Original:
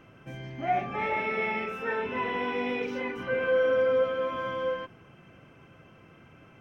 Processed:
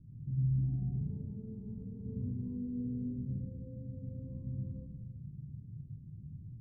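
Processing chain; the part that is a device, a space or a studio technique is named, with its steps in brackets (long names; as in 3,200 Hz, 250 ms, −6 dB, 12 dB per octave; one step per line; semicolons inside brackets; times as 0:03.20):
club heard from the street (brickwall limiter −24 dBFS, peak gain reduction 7.5 dB; low-pass filter 160 Hz 24 dB per octave; convolution reverb RT60 0.65 s, pre-delay 92 ms, DRR −2.5 dB)
level +7 dB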